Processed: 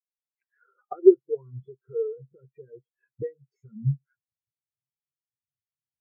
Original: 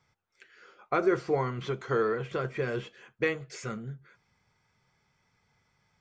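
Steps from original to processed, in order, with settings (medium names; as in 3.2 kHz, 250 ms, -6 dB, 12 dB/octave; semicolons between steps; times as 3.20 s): self-modulated delay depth 0.11 ms; recorder AGC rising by 79 dB/s; spectral contrast expander 4:1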